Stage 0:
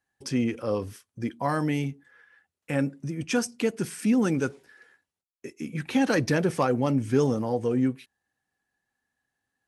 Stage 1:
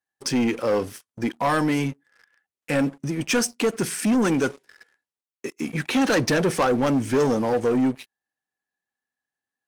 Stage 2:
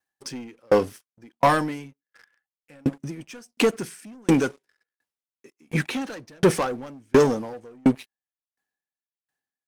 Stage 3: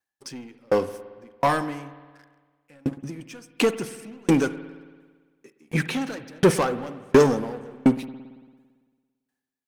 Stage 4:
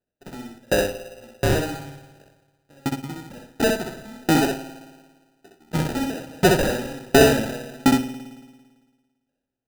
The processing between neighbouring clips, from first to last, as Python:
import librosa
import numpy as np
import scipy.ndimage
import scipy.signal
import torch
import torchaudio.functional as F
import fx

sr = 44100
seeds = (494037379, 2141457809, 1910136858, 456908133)

y1 = fx.highpass(x, sr, hz=270.0, slope=6)
y1 = fx.leveller(y1, sr, passes=3)
y1 = F.gain(torch.from_numpy(y1), -1.5).numpy()
y2 = fx.tremolo_decay(y1, sr, direction='decaying', hz=1.4, depth_db=40)
y2 = F.gain(torch.from_numpy(y2), 7.0).numpy()
y3 = fx.rider(y2, sr, range_db=10, speed_s=2.0)
y3 = fx.rev_spring(y3, sr, rt60_s=1.5, pass_ms=(56,), chirp_ms=35, drr_db=13.0)
y4 = fx.sample_hold(y3, sr, seeds[0], rate_hz=1100.0, jitter_pct=0)
y4 = fx.echo_feedback(y4, sr, ms=64, feedback_pct=17, wet_db=-3.5)